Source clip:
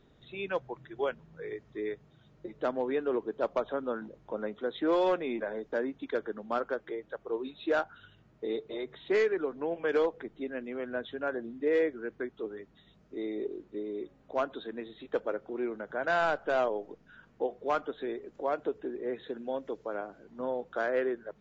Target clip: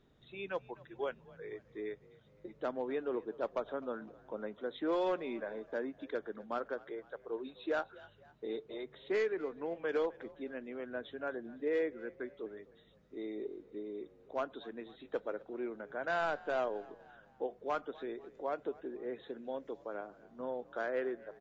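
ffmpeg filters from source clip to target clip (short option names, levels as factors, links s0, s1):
-filter_complex "[0:a]asplit=4[s0][s1][s2][s3];[s1]adelay=254,afreqshift=45,volume=0.0841[s4];[s2]adelay=508,afreqshift=90,volume=0.0403[s5];[s3]adelay=762,afreqshift=135,volume=0.0193[s6];[s0][s4][s5][s6]amix=inputs=4:normalize=0,volume=0.501"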